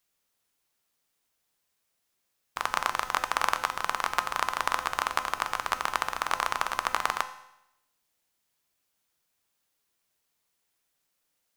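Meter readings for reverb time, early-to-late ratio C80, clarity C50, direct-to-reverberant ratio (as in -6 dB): 0.85 s, 14.5 dB, 12.5 dB, 8.5 dB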